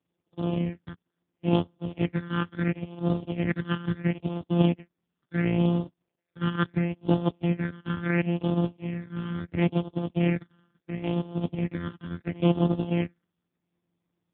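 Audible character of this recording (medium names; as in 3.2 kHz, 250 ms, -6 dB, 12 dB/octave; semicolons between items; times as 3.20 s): a buzz of ramps at a fixed pitch in blocks of 256 samples; phasing stages 8, 0.73 Hz, lowest notch 670–2000 Hz; AMR-NB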